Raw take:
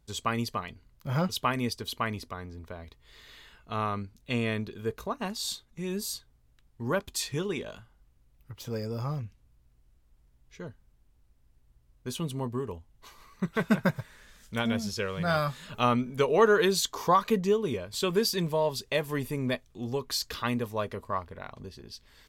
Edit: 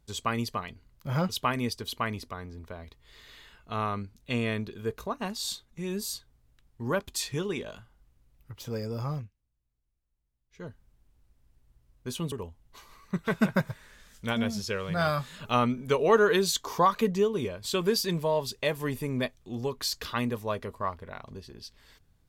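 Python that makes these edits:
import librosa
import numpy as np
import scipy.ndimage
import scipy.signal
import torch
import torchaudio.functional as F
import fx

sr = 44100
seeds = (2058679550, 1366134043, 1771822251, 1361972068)

y = fx.edit(x, sr, fx.fade_down_up(start_s=9.17, length_s=1.47, db=-18.0, fade_s=0.14),
    fx.cut(start_s=12.32, length_s=0.29), tone=tone)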